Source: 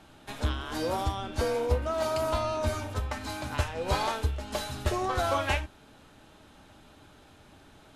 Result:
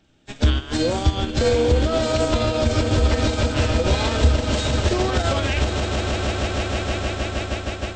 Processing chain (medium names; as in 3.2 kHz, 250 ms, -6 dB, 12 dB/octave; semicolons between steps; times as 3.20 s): knee-point frequency compression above 3.4 kHz 1.5:1; peaking EQ 1 kHz -11.5 dB 1.3 oct; echo with a slow build-up 156 ms, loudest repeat 8, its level -12.5 dB; loudness maximiser +26.5 dB; upward expansion 2.5:1, over -22 dBFS; trim -5 dB